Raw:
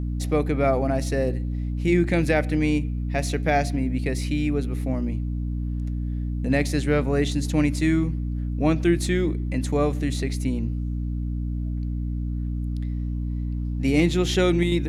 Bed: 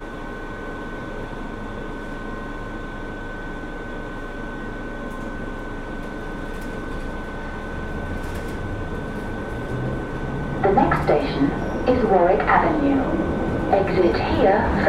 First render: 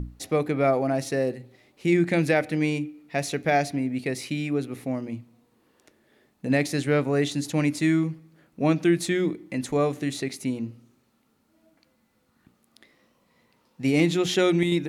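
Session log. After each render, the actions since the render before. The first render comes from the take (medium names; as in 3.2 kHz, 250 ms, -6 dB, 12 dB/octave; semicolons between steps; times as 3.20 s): hum notches 60/120/180/240/300 Hz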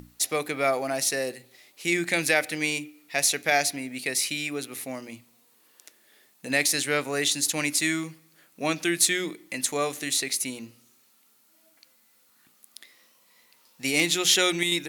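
tilt EQ +4.5 dB/octave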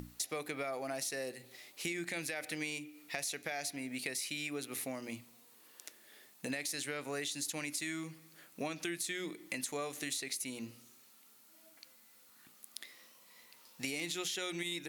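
peak limiter -15 dBFS, peak gain reduction 8.5 dB; compression 5:1, threshold -37 dBFS, peak gain reduction 13.5 dB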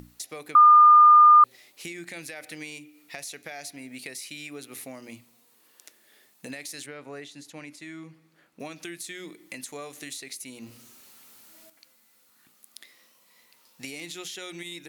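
0.55–1.44 s: bleep 1.21 kHz -10 dBFS; 6.86–8.60 s: low-pass 1.9 kHz 6 dB/octave; 10.62–11.70 s: jump at every zero crossing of -49.5 dBFS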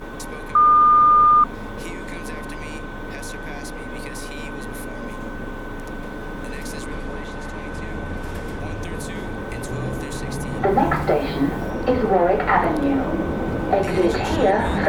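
add bed -1 dB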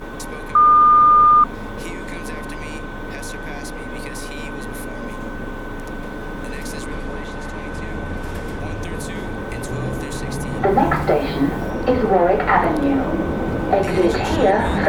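trim +2 dB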